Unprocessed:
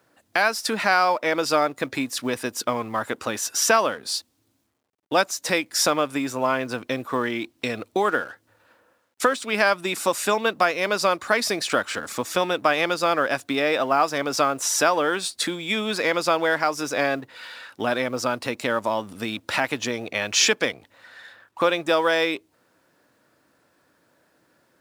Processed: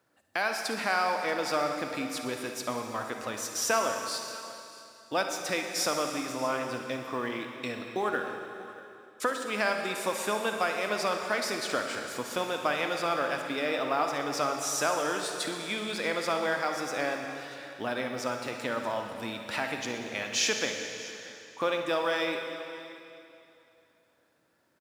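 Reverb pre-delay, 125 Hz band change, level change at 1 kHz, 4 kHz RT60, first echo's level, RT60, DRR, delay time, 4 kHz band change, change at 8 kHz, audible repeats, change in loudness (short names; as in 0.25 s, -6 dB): 36 ms, -7.5 dB, -7.5 dB, 2.7 s, -19.5 dB, 2.7 s, 3.5 dB, 0.635 s, -7.5 dB, -7.5 dB, 1, -7.5 dB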